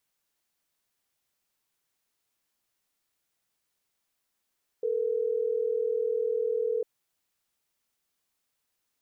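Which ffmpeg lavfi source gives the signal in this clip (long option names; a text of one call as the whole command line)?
ffmpeg -f lavfi -i "aevalsrc='0.0398*(sin(2*PI*440*t)+sin(2*PI*480*t))*clip(min(mod(t,6),2-mod(t,6))/0.005,0,1)':duration=3.12:sample_rate=44100" out.wav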